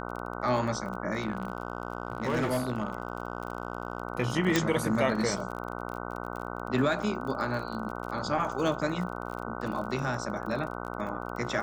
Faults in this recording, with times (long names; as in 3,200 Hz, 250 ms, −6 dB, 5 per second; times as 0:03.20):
mains buzz 60 Hz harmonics 25 −37 dBFS
surface crackle 34 per second −36 dBFS
0:01.16–0:04.02: clipping −23.5 dBFS
0:04.56: click −9 dBFS